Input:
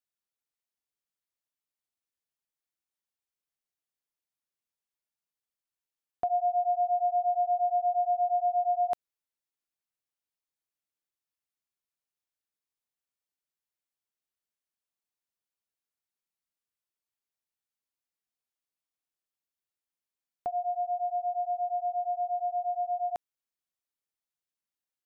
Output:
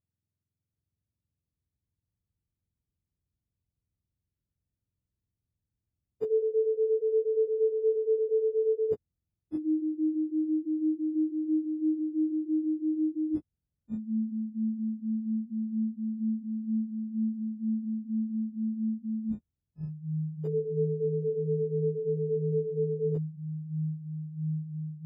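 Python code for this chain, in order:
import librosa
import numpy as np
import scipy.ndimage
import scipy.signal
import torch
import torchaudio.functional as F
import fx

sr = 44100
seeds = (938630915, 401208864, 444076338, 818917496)

y = fx.octave_mirror(x, sr, pivot_hz=560.0)
y = fx.echo_pitch(y, sr, ms=736, semitones=-6, count=3, db_per_echo=-3.0)
y = fx.tilt_shelf(y, sr, db=5.0, hz=970.0)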